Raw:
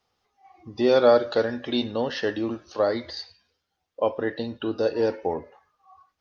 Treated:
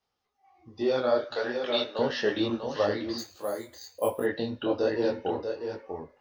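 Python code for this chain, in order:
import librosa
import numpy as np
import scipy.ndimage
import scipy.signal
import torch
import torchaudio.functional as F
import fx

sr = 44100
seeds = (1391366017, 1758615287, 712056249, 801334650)

y = fx.highpass(x, sr, hz=610.0, slope=12, at=(1.21, 1.99))
y = fx.rider(y, sr, range_db=4, speed_s=0.5)
y = y + 10.0 ** (-6.5 / 20.0) * np.pad(y, (int(644 * sr / 1000.0), 0))[:len(y)]
y = fx.resample_bad(y, sr, factor=4, down='filtered', up='hold', at=(3.18, 4.24))
y = fx.detune_double(y, sr, cents=42)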